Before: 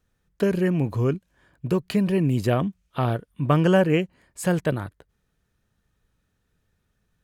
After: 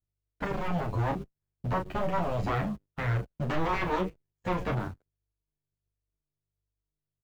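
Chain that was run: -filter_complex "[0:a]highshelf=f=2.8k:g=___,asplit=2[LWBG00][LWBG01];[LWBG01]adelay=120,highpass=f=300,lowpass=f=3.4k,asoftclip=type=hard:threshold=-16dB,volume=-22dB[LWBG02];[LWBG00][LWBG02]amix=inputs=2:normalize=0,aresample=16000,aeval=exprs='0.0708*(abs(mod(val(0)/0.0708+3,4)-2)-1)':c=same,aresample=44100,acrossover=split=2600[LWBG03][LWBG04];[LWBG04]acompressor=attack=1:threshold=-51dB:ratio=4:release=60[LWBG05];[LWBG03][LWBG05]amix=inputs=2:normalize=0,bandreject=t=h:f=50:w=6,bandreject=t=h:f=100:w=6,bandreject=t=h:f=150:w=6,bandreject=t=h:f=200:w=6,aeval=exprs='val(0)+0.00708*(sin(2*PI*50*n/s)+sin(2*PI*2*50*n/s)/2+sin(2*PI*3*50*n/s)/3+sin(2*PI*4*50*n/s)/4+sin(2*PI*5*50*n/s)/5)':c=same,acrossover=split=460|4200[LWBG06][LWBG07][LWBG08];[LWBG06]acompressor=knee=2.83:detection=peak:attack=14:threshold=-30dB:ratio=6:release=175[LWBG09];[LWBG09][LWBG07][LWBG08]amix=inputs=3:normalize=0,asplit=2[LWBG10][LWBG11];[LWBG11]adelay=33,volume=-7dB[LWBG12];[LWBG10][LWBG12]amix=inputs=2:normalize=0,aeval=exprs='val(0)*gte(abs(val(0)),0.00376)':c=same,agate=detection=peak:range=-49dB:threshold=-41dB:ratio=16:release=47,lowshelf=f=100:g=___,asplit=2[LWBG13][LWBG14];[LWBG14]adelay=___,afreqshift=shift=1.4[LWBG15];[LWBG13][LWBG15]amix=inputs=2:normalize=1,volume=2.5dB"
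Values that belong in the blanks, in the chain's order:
-10, 3.5, 9.8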